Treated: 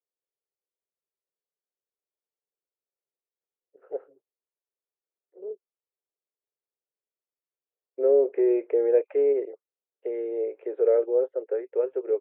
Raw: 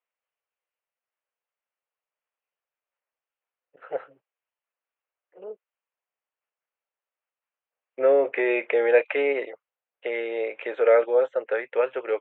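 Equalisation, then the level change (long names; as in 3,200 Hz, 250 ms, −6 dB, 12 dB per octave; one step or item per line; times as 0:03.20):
resonant band-pass 390 Hz, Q 4.4
high-frequency loss of the air 64 metres
+5.0 dB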